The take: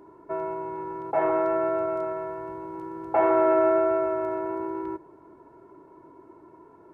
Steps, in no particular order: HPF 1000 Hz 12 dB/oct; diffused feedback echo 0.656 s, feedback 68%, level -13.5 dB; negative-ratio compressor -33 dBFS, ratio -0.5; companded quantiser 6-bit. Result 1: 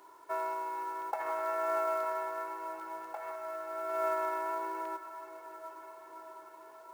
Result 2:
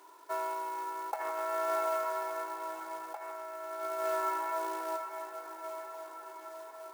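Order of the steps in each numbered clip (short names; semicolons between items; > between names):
HPF > negative-ratio compressor > diffused feedback echo > companded quantiser; diffused feedback echo > companded quantiser > HPF > negative-ratio compressor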